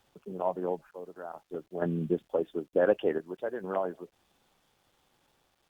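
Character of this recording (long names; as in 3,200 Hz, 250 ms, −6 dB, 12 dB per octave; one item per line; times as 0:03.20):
sample-and-hold tremolo 2.2 Hz, depth 80%
a quantiser's noise floor 12 bits, dither none
Opus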